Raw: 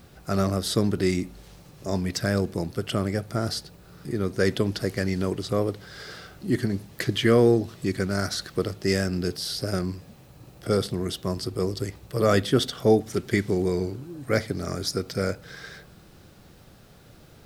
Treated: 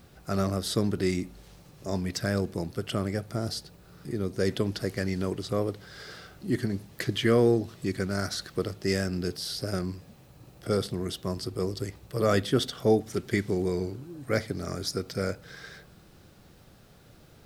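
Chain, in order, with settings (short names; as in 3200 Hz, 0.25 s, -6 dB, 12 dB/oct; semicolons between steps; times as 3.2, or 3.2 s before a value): 3.2–4.49 dynamic EQ 1500 Hz, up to -6 dB, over -41 dBFS, Q 1; gain -3.5 dB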